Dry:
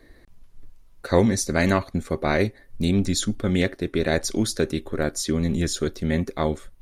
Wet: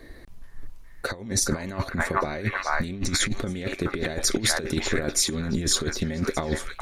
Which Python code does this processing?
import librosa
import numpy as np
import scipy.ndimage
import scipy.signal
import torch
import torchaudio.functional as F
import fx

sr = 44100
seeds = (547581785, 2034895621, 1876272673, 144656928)

p1 = x + fx.echo_stepped(x, sr, ms=420, hz=1200.0, octaves=0.7, feedback_pct=70, wet_db=-3.0, dry=0)
p2 = fx.over_compress(p1, sr, threshold_db=-26.0, ratio=-0.5)
y = p2 * 10.0 ** (1.5 / 20.0)